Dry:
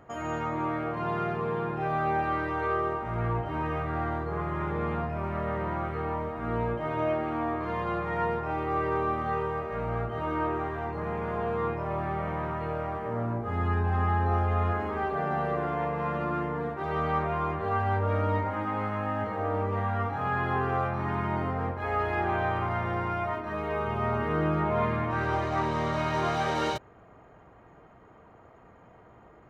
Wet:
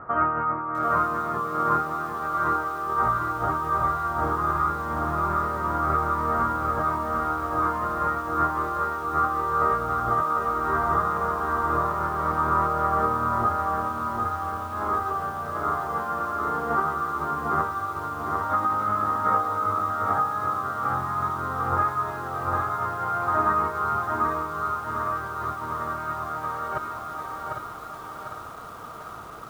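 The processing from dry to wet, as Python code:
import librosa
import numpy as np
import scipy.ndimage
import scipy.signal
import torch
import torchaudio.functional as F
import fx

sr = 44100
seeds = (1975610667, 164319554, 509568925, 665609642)

p1 = fx.over_compress(x, sr, threshold_db=-34.0, ratio=-0.5)
p2 = fx.lowpass_res(p1, sr, hz=1300.0, q=7.5)
p3 = p2 + fx.echo_feedback(p2, sr, ms=803, feedback_pct=31, wet_db=-7.0, dry=0)
y = fx.echo_crushed(p3, sr, ms=748, feedback_pct=55, bits=8, wet_db=-4.0)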